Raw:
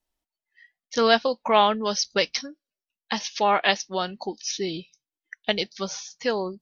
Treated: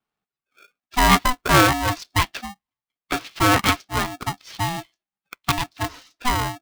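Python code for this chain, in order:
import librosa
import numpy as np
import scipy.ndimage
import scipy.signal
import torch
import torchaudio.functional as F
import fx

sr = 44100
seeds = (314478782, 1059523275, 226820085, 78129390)

y = scipy.signal.sosfilt(scipy.signal.butter(2, 140.0, 'highpass', fs=sr, output='sos'), x)
y = fx.air_absorb(y, sr, metres=390.0)
y = y * np.sign(np.sin(2.0 * np.pi * 500.0 * np.arange(len(y)) / sr))
y = y * librosa.db_to_amplitude(5.5)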